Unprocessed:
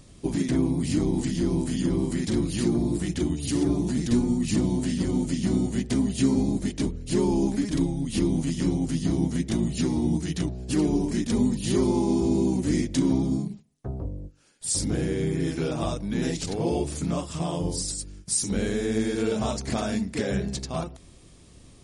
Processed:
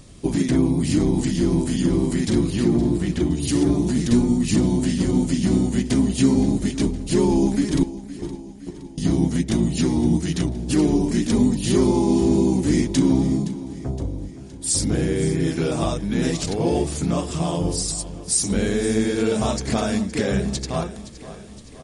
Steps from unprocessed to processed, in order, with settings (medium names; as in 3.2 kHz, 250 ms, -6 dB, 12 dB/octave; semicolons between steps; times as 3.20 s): 2.50–3.33 s: treble shelf 5.1 kHz -10.5 dB; 7.83–8.98 s: gate -19 dBFS, range -31 dB; feedback delay 517 ms, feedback 56%, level -15.5 dB; trim +5 dB